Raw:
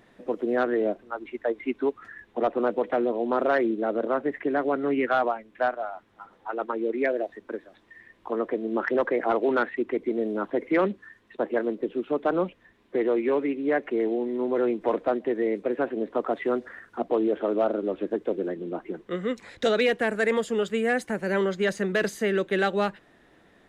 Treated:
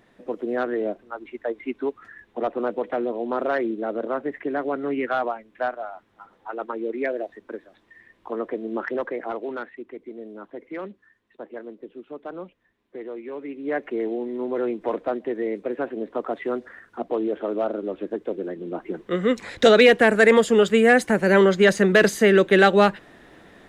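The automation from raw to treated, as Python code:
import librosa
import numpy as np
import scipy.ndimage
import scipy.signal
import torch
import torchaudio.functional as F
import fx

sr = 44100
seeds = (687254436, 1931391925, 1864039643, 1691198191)

y = fx.gain(x, sr, db=fx.line((8.73, -1.0), (9.88, -11.0), (13.31, -11.0), (13.77, -1.0), (18.49, -1.0), (19.42, 9.0)))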